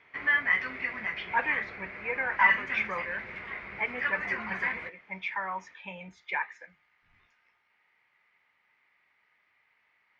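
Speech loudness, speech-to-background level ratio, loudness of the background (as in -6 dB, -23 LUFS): -33.5 LUFS, -3.5 dB, -30.0 LUFS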